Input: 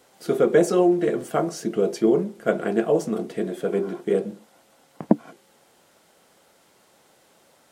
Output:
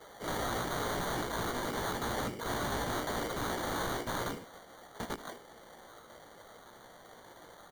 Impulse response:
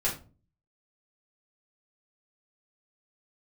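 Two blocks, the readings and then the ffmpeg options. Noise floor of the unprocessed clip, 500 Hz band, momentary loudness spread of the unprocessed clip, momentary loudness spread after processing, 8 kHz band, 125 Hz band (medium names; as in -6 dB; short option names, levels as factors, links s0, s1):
-59 dBFS, -17.0 dB, 9 LU, 19 LU, -2.0 dB, -8.0 dB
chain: -filter_complex "[0:a]acompressor=threshold=0.0631:ratio=6,asplit=2[s0][s1];[s1]highpass=f=720:p=1,volume=5.62,asoftclip=type=tanh:threshold=0.237[s2];[s0][s2]amix=inputs=2:normalize=0,lowpass=f=2300:p=1,volume=0.501,afftfilt=real='hypot(re,im)*cos(2*PI*random(0))':imag='hypot(re,im)*sin(2*PI*random(1))':win_size=512:overlap=0.75,acrusher=samples=17:mix=1:aa=0.000001,aeval=exprs='(mod(56.2*val(0)+1,2)-1)/56.2':c=same,asplit=2[s3][s4];[s4]aecho=0:1:17|77:0.447|0.2[s5];[s3][s5]amix=inputs=2:normalize=0,volume=1.68"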